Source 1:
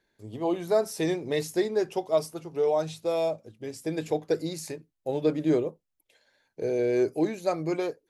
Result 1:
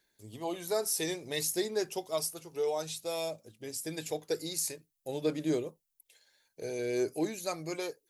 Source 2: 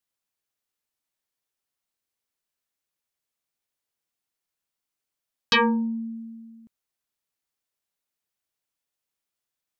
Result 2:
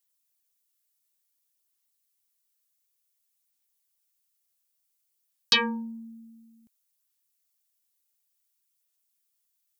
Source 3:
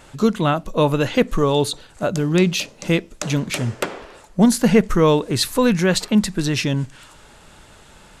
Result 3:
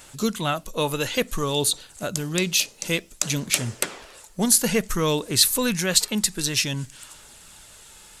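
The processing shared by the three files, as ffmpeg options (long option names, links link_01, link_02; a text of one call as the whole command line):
ffmpeg -i in.wav -af "crystalizer=i=5.5:c=0,aphaser=in_gain=1:out_gain=1:delay=2.4:decay=0.24:speed=0.56:type=sinusoidal,volume=-9dB" out.wav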